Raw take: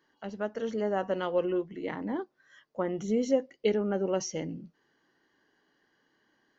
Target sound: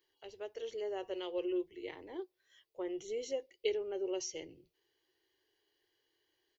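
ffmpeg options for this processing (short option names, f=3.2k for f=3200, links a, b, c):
-af "firequalizer=gain_entry='entry(100,0);entry(200,-30);entry(360,2);entry(590,-7);entry(870,-7);entry(1400,-13);entry(2300,3);entry(3500,5);entry(6000,1);entry(11000,12)':delay=0.05:min_phase=1,volume=-6dB"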